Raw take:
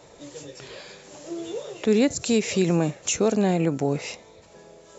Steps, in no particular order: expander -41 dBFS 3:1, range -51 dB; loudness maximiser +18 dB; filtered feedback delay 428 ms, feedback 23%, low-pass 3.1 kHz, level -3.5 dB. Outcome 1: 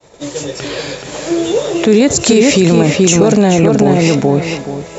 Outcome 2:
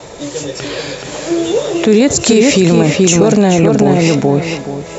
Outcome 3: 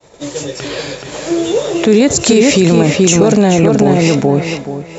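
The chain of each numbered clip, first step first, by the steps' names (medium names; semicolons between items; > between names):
filtered feedback delay > expander > loudness maximiser; filtered feedback delay > loudness maximiser > expander; expander > filtered feedback delay > loudness maximiser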